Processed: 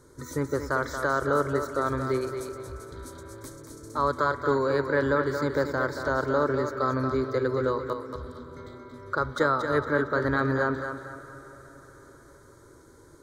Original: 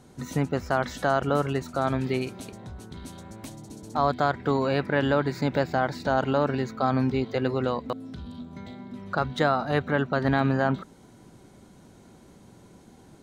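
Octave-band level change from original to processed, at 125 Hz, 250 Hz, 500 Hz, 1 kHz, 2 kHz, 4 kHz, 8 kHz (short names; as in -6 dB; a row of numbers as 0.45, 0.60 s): -4.0 dB, -3.0 dB, +0.5 dB, -1.0 dB, +1.5 dB, -5.0 dB, n/a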